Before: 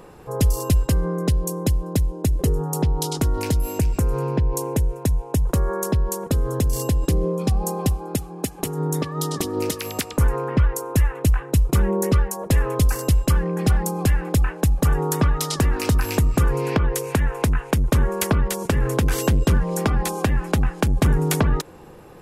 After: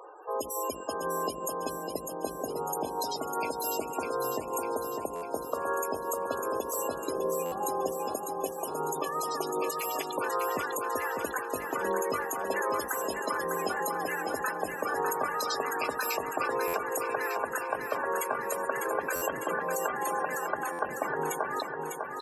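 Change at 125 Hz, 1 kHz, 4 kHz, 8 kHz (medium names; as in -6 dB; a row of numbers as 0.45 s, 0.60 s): -31.0 dB, +0.5 dB, -9.0 dB, -7.5 dB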